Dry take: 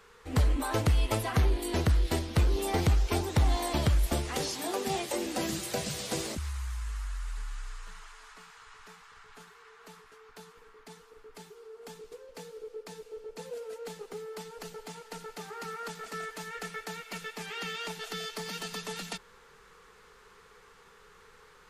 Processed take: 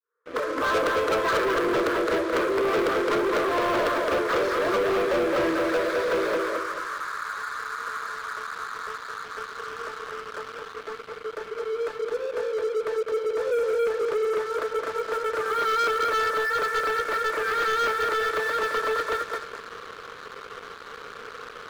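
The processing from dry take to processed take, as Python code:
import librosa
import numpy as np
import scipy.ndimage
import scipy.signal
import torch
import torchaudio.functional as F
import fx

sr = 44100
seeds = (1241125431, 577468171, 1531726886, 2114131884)

p1 = fx.fade_in_head(x, sr, length_s=0.81)
p2 = fx.cabinet(p1, sr, low_hz=400.0, low_slope=24, high_hz=2500.0, hz=(400.0, 910.0, 2000.0), db=(-4, -7, -8))
p3 = fx.fixed_phaser(p2, sr, hz=760.0, stages=6)
p4 = p3 + fx.echo_feedback(p3, sr, ms=215, feedback_pct=32, wet_db=-4.5, dry=0)
p5 = fx.leveller(p4, sr, passes=5)
y = p5 * 10.0 ** (4.5 / 20.0)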